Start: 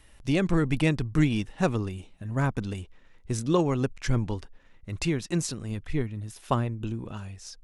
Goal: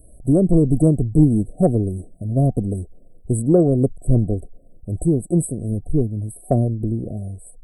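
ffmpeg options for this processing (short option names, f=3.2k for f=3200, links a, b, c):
-af "afftfilt=real='re*(1-between(b*sr/4096,750,7800))':imag='im*(1-between(b*sr/4096,750,7800))':win_size=4096:overlap=0.75,acontrast=88,volume=2.5dB"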